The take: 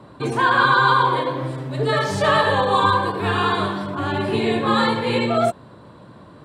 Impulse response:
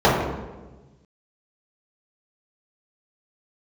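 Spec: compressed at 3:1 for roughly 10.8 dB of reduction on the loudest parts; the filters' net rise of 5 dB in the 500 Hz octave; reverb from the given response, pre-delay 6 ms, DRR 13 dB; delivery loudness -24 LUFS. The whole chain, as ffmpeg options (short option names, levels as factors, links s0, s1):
-filter_complex "[0:a]equalizer=f=500:t=o:g=6,acompressor=threshold=0.0501:ratio=3,asplit=2[s0][s1];[1:a]atrim=start_sample=2205,adelay=6[s2];[s1][s2]afir=irnorm=-1:irlink=0,volume=0.0119[s3];[s0][s3]amix=inputs=2:normalize=0,volume=1.26"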